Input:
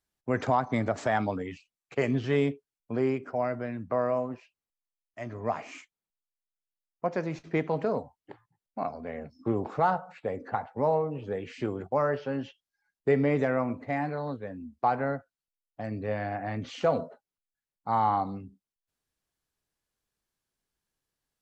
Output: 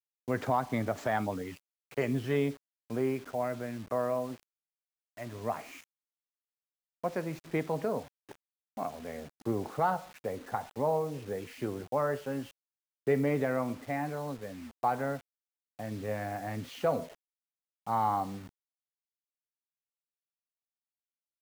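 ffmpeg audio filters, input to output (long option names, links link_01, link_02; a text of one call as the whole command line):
ffmpeg -i in.wav -af "highshelf=frequency=4900:gain=-2.5,acrusher=bits=7:mix=0:aa=0.000001,volume=-3.5dB" out.wav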